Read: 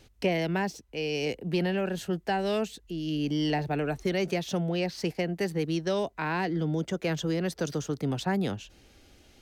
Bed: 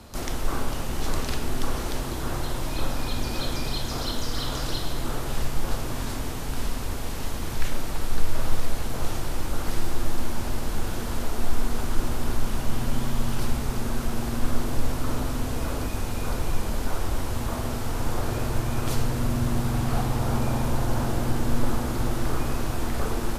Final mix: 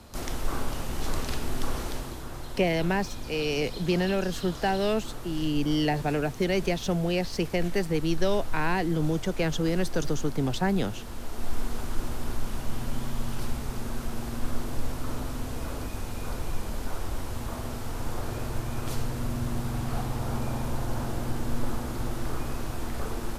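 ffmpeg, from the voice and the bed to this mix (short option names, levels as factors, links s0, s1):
-filter_complex "[0:a]adelay=2350,volume=1.26[s0];[1:a]volume=1.19,afade=t=out:st=1.8:d=0.48:silence=0.446684,afade=t=in:st=11.17:d=0.4:silence=0.595662[s1];[s0][s1]amix=inputs=2:normalize=0"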